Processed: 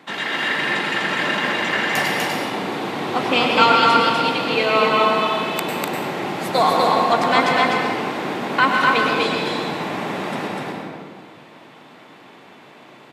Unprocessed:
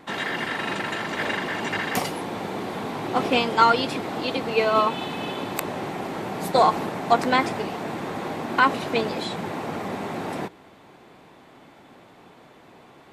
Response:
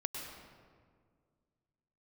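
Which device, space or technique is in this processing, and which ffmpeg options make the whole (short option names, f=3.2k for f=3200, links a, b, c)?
stadium PA: -filter_complex "[0:a]highpass=f=120:w=0.5412,highpass=f=120:w=1.3066,equalizer=f=2.9k:t=o:w=2.3:g=6,aecho=1:1:247.8|285.7:0.794|0.251[a];[1:a]atrim=start_sample=2205[b];[a][b]afir=irnorm=-1:irlink=0"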